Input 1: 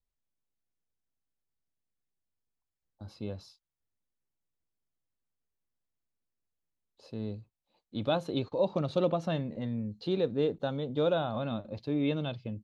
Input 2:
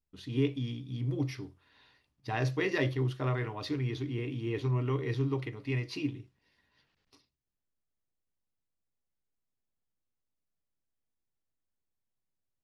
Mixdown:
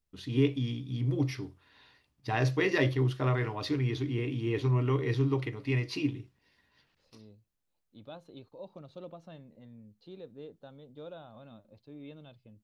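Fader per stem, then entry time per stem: −17.5, +3.0 decibels; 0.00, 0.00 seconds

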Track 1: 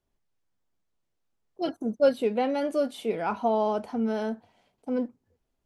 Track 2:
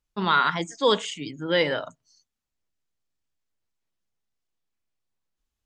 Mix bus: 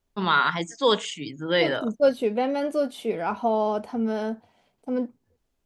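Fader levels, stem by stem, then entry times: +1.5, 0.0 decibels; 0.00, 0.00 seconds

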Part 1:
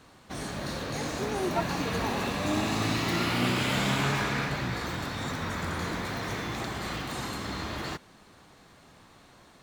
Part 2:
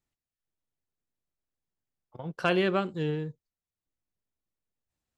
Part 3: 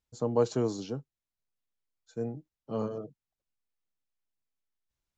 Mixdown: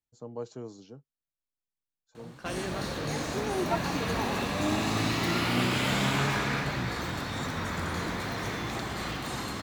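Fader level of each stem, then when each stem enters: 0.0, −11.5, −12.0 decibels; 2.15, 0.00, 0.00 seconds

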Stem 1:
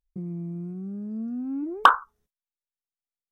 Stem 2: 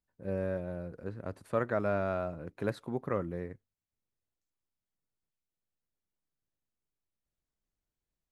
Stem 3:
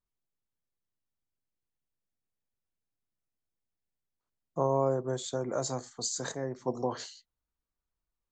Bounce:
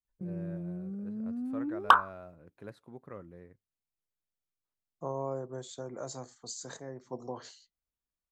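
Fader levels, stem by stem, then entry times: −4.5, −13.0, −8.0 decibels; 0.05, 0.00, 0.45 seconds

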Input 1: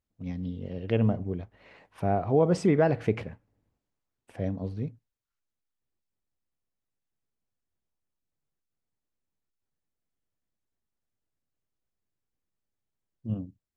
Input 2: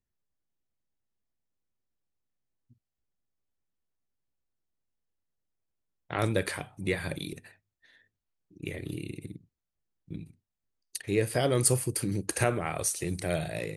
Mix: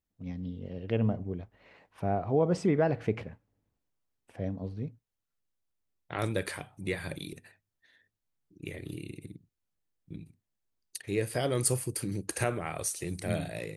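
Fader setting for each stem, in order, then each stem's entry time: −3.5, −3.5 decibels; 0.00, 0.00 seconds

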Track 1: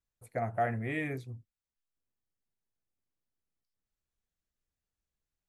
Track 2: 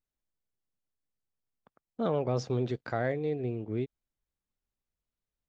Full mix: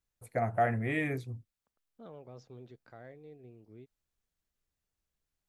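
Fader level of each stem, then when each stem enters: +2.5, −20.0 decibels; 0.00, 0.00 seconds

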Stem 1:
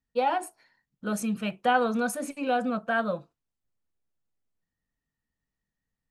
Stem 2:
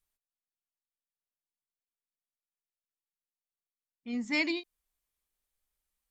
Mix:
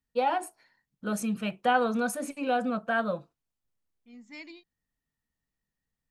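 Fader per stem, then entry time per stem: −1.0, −15.5 decibels; 0.00, 0.00 seconds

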